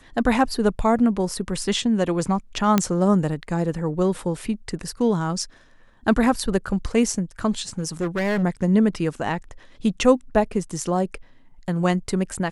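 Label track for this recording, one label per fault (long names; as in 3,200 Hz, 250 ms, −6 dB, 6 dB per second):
2.780000	2.780000	click −4 dBFS
7.780000	8.440000	clipping −19.5 dBFS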